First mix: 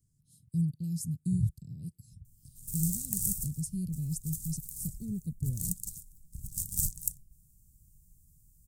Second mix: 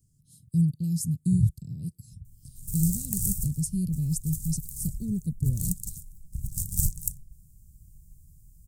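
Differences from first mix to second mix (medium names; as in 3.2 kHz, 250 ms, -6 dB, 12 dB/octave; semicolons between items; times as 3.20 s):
speech +6.5 dB; background: add tone controls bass +10 dB, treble +2 dB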